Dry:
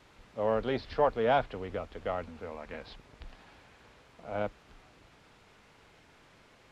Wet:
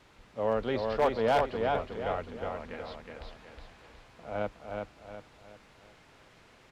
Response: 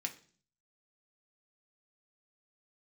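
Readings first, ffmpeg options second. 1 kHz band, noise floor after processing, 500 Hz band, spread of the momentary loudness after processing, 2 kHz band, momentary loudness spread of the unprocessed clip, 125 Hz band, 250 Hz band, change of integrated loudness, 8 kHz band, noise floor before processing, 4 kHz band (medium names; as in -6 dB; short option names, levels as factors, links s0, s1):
+1.5 dB, -59 dBFS, +1.5 dB, 21 LU, +1.5 dB, 18 LU, +1.5 dB, +1.5 dB, +1.0 dB, no reading, -61 dBFS, +2.0 dB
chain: -af "aecho=1:1:366|732|1098|1464|1830:0.631|0.246|0.096|0.0374|0.0146,aeval=exprs='0.133*(abs(mod(val(0)/0.133+3,4)-2)-1)':c=same"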